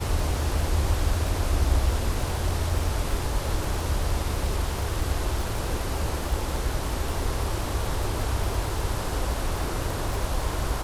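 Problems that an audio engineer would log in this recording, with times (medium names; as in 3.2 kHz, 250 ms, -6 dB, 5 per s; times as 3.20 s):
crackle 74 per s -31 dBFS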